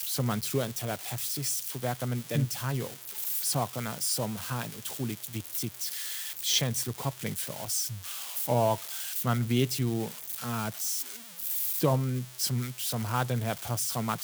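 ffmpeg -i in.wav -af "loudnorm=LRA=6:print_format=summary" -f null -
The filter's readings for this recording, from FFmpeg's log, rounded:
Input Integrated:    -30.2 LUFS
Input True Peak:     -12.9 dBTP
Input LRA:             1.5 LU
Input Threshold:     -40.2 LUFS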